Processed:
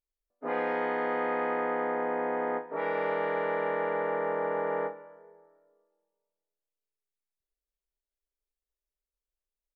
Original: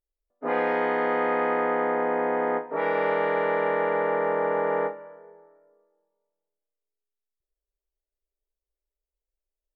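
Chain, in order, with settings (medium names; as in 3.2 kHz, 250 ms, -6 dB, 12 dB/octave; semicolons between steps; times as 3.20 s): echo from a far wall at 25 m, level -22 dB; trim -5.5 dB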